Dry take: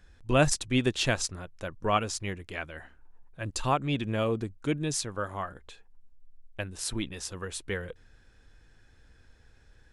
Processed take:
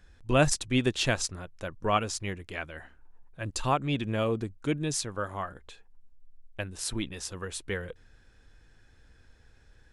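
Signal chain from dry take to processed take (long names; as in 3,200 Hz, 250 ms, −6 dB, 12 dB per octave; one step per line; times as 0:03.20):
no processing that can be heard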